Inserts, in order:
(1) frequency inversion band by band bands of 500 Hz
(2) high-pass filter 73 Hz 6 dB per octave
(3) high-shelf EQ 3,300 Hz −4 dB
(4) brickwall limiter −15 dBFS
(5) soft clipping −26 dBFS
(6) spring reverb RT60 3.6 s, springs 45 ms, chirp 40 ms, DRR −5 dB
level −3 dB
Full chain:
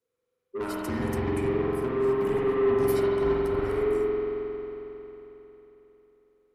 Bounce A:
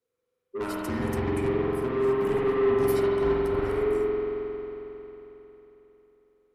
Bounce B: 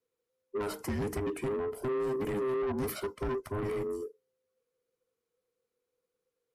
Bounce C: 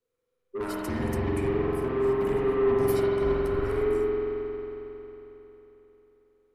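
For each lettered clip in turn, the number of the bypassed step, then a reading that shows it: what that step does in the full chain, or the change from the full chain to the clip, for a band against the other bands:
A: 4, change in momentary loudness spread −1 LU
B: 6, change in momentary loudness spread −11 LU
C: 2, 125 Hz band +1.5 dB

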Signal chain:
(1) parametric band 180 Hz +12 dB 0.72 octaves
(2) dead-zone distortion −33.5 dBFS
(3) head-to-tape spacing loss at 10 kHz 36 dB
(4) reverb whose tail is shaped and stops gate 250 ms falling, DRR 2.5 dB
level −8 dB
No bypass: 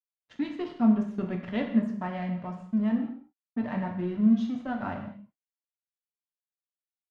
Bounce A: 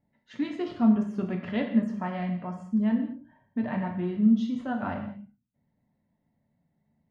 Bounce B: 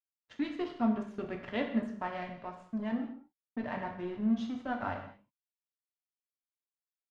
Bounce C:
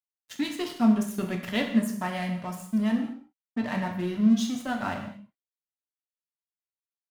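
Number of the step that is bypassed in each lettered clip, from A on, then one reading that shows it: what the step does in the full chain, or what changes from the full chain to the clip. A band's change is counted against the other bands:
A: 2, distortion level −18 dB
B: 1, 125 Hz band −9.0 dB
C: 3, 2 kHz band +5.5 dB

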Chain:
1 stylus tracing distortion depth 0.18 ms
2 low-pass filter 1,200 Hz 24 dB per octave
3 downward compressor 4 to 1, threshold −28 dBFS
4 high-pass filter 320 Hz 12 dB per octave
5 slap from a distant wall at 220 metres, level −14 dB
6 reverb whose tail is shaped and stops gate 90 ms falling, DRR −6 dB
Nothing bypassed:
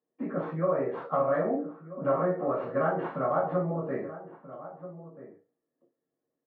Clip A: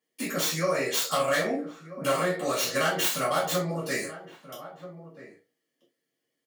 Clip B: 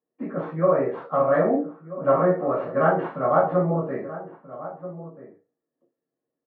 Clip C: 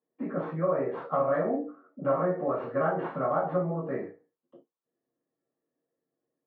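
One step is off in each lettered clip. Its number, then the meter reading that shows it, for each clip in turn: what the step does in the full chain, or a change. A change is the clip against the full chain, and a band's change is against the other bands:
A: 2, 2 kHz band +12.0 dB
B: 3, change in integrated loudness +6.5 LU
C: 5, change in momentary loudness spread −9 LU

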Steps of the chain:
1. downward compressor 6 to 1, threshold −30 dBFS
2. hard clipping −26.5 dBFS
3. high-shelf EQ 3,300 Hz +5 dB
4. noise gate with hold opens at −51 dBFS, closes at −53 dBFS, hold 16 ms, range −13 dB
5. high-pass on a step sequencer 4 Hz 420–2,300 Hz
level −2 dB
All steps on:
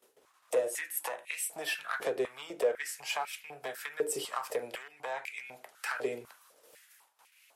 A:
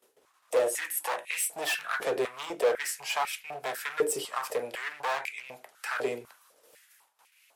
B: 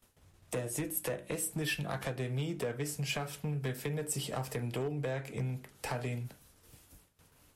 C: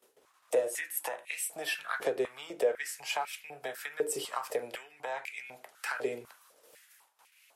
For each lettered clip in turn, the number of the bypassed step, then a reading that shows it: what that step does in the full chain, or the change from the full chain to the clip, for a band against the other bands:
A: 1, change in momentary loudness spread −2 LU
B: 5, 125 Hz band +29.0 dB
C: 2, distortion level −17 dB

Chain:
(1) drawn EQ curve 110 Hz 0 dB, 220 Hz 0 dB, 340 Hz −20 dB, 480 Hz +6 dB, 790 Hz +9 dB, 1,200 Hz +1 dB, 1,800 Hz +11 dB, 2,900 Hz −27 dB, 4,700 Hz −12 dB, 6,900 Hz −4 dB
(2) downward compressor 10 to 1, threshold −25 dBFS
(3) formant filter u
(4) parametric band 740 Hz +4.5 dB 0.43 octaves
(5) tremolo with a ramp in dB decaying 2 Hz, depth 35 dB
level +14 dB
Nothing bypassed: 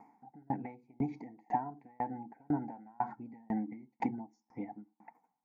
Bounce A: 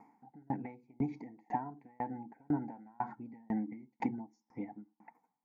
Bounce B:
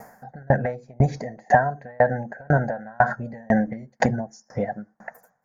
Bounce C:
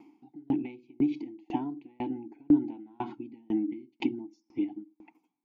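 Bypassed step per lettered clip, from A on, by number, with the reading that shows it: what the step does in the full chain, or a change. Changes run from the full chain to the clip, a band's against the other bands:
4, 1 kHz band −3.0 dB
3, 250 Hz band −12.0 dB
1, 1 kHz band −10.0 dB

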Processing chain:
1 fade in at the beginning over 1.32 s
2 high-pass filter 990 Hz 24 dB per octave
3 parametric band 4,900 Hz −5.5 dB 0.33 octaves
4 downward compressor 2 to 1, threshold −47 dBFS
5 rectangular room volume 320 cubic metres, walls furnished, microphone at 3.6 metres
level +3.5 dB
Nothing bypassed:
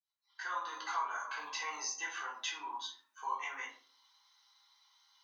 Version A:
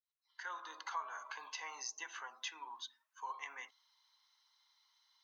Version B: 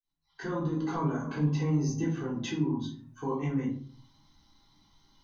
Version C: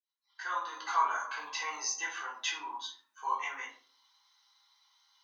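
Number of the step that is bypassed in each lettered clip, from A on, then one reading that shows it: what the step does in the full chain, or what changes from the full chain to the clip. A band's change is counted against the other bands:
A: 5, echo-to-direct ratio 5.0 dB to none audible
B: 2, 250 Hz band +37.0 dB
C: 4, change in momentary loudness spread +4 LU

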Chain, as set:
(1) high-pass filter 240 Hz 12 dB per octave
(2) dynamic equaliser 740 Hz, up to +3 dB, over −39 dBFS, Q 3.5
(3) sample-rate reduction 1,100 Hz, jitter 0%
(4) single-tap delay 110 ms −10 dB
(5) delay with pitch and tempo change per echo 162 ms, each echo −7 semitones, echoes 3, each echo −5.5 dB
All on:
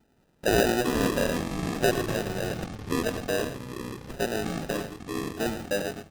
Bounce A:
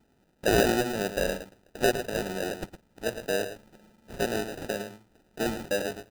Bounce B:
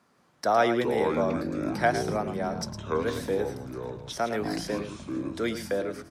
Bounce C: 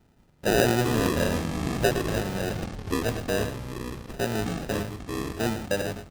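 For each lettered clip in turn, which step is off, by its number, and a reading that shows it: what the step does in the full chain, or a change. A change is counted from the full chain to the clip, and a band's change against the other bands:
5, 125 Hz band −4.0 dB
3, 1 kHz band +6.5 dB
1, 125 Hz band +4.0 dB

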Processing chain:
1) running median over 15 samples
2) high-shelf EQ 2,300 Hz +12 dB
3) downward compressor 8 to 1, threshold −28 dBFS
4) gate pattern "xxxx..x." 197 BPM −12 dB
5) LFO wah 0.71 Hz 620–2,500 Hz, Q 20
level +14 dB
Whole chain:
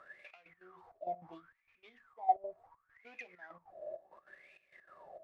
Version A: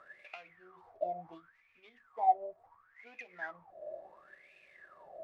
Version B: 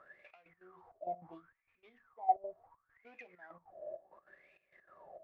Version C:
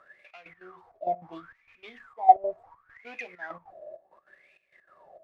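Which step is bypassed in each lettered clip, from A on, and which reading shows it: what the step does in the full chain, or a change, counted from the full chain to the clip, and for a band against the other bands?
4, change in crest factor −2.5 dB
2, 2 kHz band −4.0 dB
3, average gain reduction 7.0 dB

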